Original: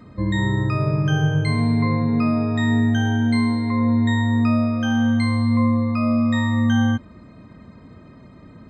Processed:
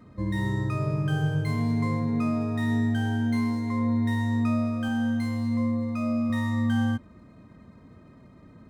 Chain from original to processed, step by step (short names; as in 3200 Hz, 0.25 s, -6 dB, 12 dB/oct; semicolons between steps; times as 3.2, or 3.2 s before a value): median filter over 9 samples; 4.88–6.3 notch comb 1100 Hz; gain -6.5 dB